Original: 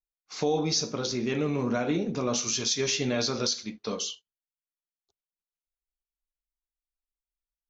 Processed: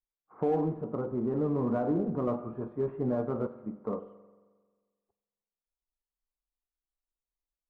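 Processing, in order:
Butterworth low-pass 1,200 Hz 36 dB per octave
in parallel at −9.5 dB: hard clipping −27.5 dBFS, distortion −9 dB
on the sum: convolution reverb RT60 1.5 s, pre-delay 44 ms, DRR 14.5 dB
level −3 dB

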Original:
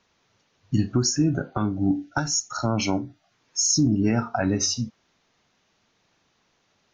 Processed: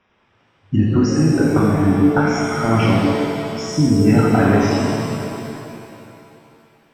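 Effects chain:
Savitzky-Golay smoothing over 25 samples
reverb with rising layers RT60 2.6 s, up +7 semitones, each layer −8 dB, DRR −4 dB
level +4 dB

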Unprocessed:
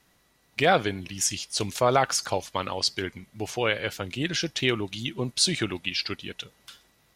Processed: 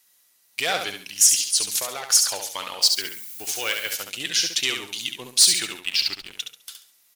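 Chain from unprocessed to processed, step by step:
soft clipping −13.5 dBFS, distortion −18 dB
0:01.44–0:02.10: downward compressor 6 to 1, threshold −26 dBFS, peak gain reduction 7.5 dB
RIAA equalisation recording
0:05.80–0:06.32: slack as between gear wheels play −27.5 dBFS
repeating echo 69 ms, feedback 35%, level −6 dB
leveller curve on the samples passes 1
tilt shelving filter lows −3.5 dB, about 1,500 Hz
0:02.81–0:03.92: background noise violet −32 dBFS
level −6 dB

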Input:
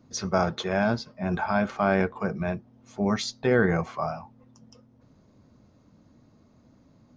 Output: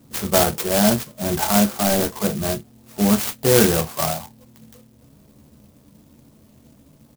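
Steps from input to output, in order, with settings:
0:01.69–0:02.16: variable-slope delta modulation 16 kbit/s
ambience of single reflections 14 ms −4 dB, 39 ms −12 dB
converter with an unsteady clock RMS 0.15 ms
level +5.5 dB

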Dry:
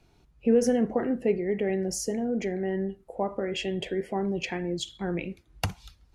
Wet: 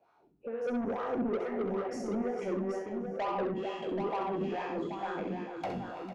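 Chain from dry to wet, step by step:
peak hold with a decay on every bin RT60 1.01 s
low-shelf EQ 110 Hz −9.5 dB
in parallel at −2.5 dB: compressor whose output falls as the input rises −27 dBFS, ratio −0.5
on the sum: LFO wah 2.2 Hz 210–1,200 Hz, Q 4.3
soft clipping −31.5 dBFS, distortion −9 dB
on a send: multi-tap delay 66/450/491/781 ms −6/−11/−18.5/−6.5 dB
on the sum: level +1.5 dB

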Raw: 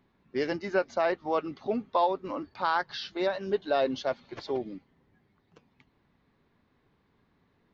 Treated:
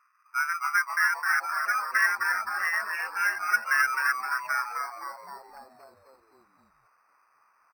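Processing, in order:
neighbouring bands swapped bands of 1,000 Hz
0:00.55–0:01.38: downward expander −50 dBFS
brick-wall band-pass 920–2,800 Hz
in parallel at −7 dB: decimation without filtering 12×
on the sum: echo with shifted repeats 260 ms, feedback 57%, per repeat −150 Hz, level −4.5 dB

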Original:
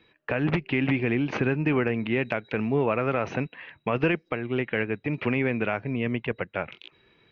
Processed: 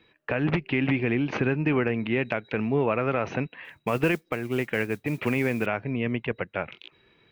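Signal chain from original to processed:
0:03.64–0:05.66: noise that follows the level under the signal 25 dB

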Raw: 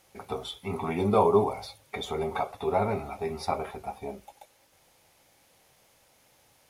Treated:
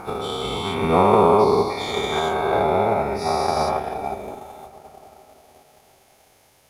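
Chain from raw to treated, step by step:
every bin's largest magnitude spread in time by 480 ms
0:03.54–0:04.17: double-tracking delay 13 ms −7 dB
on a send at −13 dB: convolution reverb RT60 4.6 s, pre-delay 45 ms
on the sum: transient designer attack +6 dB, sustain −4 dB
level −1 dB

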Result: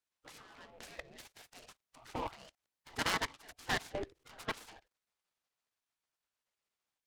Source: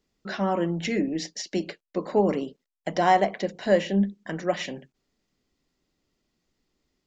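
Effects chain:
output level in coarse steps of 22 dB
gate on every frequency bin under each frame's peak −20 dB weak
short delay modulated by noise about 1,600 Hz, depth 0.054 ms
level +6 dB

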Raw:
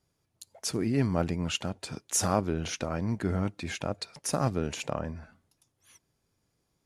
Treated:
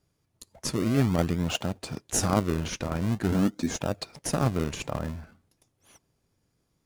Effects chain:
0:03.32–0:03.79: graphic EQ with 15 bands 100 Hz −9 dB, 250 Hz +11 dB, 2,500 Hz −10 dB, 6,300 Hz +9 dB
in parallel at −5 dB: sample-and-hold swept by an LFO 40×, swing 100% 0.46 Hz

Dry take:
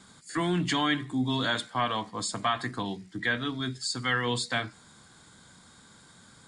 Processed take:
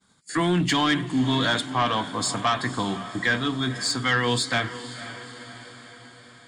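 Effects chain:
downward expander −44 dBFS
feedback delay with all-pass diffusion 514 ms, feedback 57%, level −14.5 dB
sine wavefolder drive 4 dB, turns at −13.5 dBFS
level −1.5 dB

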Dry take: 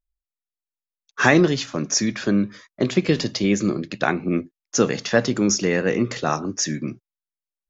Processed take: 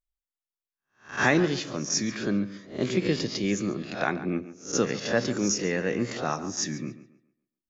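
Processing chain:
peak hold with a rise ahead of every peak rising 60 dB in 0.34 s
tape delay 140 ms, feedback 33%, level −13.5 dB, low-pass 4,200 Hz
level −7.5 dB

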